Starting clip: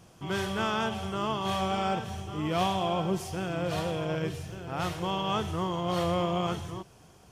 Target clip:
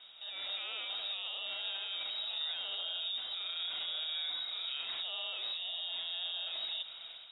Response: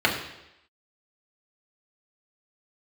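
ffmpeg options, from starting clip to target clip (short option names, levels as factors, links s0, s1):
-filter_complex "[0:a]highpass=f=66:w=0.5412,highpass=f=66:w=1.3066,alimiter=level_in=5.96:limit=0.0631:level=0:latency=1:release=69,volume=0.168,dynaudnorm=f=230:g=3:m=2.37,asplit=2[s0][s1];[1:a]atrim=start_sample=2205,asetrate=24255,aresample=44100[s2];[s1][s2]afir=irnorm=-1:irlink=0,volume=0.0237[s3];[s0][s3]amix=inputs=2:normalize=0,lowpass=f=3300:t=q:w=0.5098,lowpass=f=3300:t=q:w=0.6013,lowpass=f=3300:t=q:w=0.9,lowpass=f=3300:t=q:w=2.563,afreqshift=-3900"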